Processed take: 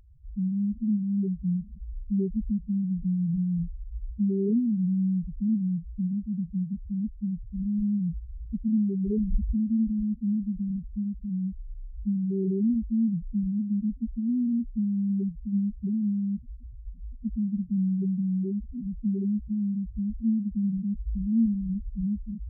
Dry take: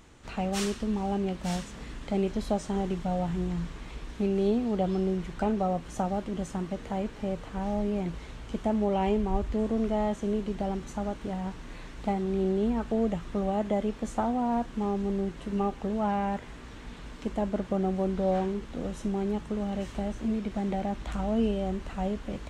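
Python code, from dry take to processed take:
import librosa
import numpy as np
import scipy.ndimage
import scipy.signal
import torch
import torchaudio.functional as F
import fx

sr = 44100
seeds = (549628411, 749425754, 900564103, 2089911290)

y = scipy.ndimage.gaussian_filter1d(x, 19.0, mode='constant')
y = fx.spec_topn(y, sr, count=2)
y = F.gain(torch.from_numpy(y), 7.0).numpy()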